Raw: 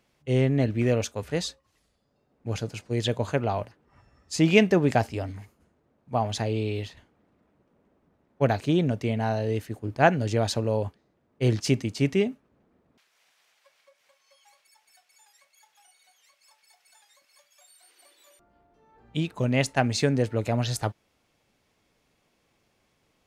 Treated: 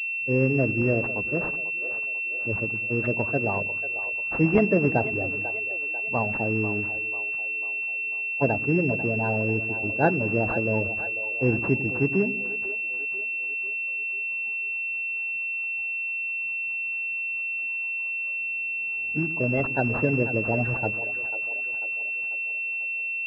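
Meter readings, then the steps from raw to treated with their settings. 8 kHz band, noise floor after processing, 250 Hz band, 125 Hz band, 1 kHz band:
under -25 dB, -30 dBFS, 0.0 dB, -1.5 dB, -1.5 dB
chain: bin magnitudes rounded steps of 30 dB; split-band echo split 390 Hz, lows 99 ms, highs 0.493 s, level -12 dB; pulse-width modulation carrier 2700 Hz

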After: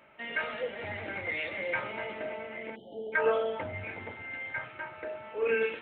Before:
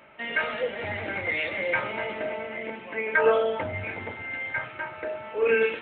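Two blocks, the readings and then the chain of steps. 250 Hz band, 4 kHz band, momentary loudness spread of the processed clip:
-6.0 dB, -6.0 dB, 12 LU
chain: spectral delete 2.76–3.13, 880–2900 Hz; gain -6 dB

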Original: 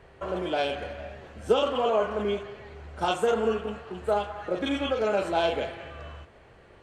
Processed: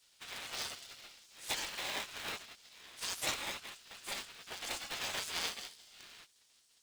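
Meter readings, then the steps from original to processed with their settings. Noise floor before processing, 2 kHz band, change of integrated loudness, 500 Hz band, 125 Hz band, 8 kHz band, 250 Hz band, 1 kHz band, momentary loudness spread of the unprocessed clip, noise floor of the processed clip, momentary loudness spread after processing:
-54 dBFS, -5.5 dB, -11.5 dB, -26.0 dB, -18.5 dB, +8.5 dB, -23.5 dB, -16.5 dB, 17 LU, -69 dBFS, 18 LU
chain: spectral gate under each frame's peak -30 dB weak; bell 620 Hz -11.5 dB 1.7 oct; polarity switched at an audio rate 700 Hz; gain +9.5 dB

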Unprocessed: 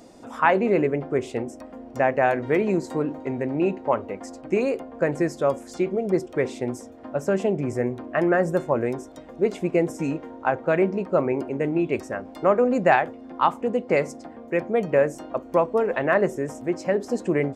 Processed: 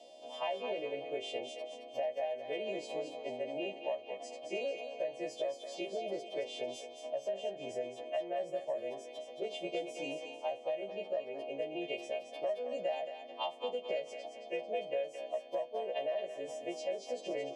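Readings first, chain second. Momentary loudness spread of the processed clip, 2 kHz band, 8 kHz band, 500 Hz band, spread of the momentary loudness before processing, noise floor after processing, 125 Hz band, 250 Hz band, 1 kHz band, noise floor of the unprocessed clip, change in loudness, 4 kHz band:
5 LU, -17.5 dB, -10.0 dB, -13.5 dB, 11 LU, -51 dBFS, -30.5 dB, -22.5 dB, -17.0 dB, -44 dBFS, -15.0 dB, n/a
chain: frequency quantiser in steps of 2 st; double band-pass 1400 Hz, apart 2.3 oct; in parallel at -7.5 dB: soft clip -25.5 dBFS, distortion -10 dB; on the sum: compressor 6:1, threshold -35 dBFS, peak gain reduction 17 dB; thinning echo 0.221 s, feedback 42%, high-pass 800 Hz, level -6 dB; gain +1 dB

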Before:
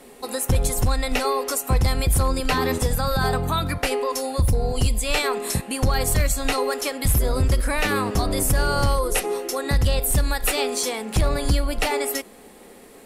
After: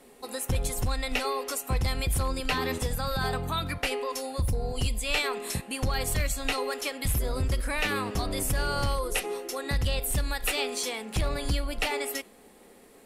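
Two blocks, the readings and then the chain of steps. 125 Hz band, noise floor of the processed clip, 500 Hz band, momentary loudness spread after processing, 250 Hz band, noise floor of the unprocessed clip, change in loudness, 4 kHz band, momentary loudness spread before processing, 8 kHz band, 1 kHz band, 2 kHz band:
-8.0 dB, -54 dBFS, -8.0 dB, 3 LU, -8.0 dB, -46 dBFS, -7.0 dB, -4.0 dB, 4 LU, -7.5 dB, -7.0 dB, -4.0 dB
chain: dynamic EQ 2800 Hz, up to +6 dB, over -39 dBFS, Q 1.1; gain -8 dB

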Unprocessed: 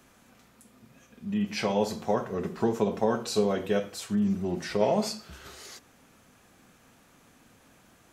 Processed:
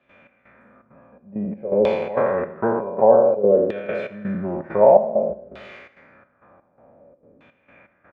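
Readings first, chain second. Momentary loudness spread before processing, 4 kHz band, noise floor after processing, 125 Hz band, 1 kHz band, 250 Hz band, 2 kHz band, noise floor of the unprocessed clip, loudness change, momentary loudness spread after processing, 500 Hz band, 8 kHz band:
17 LU, n/a, -63 dBFS, +1.0 dB, +9.0 dB, +1.0 dB, +4.5 dB, -60 dBFS, +9.0 dB, 14 LU, +11.5 dB, under -25 dB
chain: spectral trails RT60 1.34 s; HPF 58 Hz; resonant high shelf 2900 Hz -12 dB, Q 1.5; step gate ".xx..xxxx.xxx." 166 bpm -12 dB; LFO low-pass saw down 0.54 Hz 380–3600 Hz; small resonant body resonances 570/2400/3500 Hz, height 14 dB, ringing for 55 ms; on a send: feedback echo 80 ms, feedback 53%, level -19 dB

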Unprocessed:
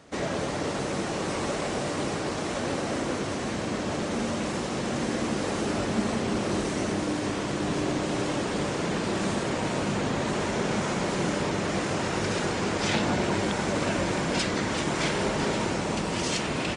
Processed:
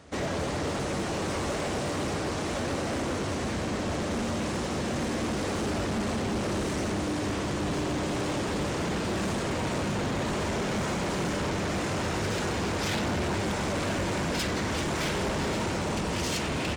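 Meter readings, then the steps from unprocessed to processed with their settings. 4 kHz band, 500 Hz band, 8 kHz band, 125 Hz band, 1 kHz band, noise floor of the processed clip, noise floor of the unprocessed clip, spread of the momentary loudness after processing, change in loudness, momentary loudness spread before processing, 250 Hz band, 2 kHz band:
-1.5 dB, -2.0 dB, -1.5 dB, +0.5 dB, -2.0 dB, -31 dBFS, -31 dBFS, 2 LU, -1.5 dB, 3 LU, -2.0 dB, -2.0 dB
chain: bell 72 Hz +11 dB 0.77 oct; hard clip -26 dBFS, distortion -11 dB

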